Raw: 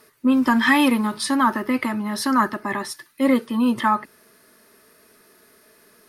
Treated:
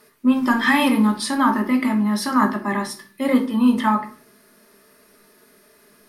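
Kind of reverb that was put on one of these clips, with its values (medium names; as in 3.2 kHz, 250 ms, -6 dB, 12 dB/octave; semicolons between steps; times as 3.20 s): simulated room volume 310 m³, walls furnished, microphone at 1.3 m; trim -1.5 dB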